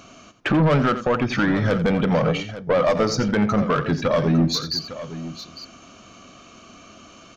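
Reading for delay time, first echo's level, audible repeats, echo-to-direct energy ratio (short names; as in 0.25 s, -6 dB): 86 ms, -12.5 dB, 2, -10.0 dB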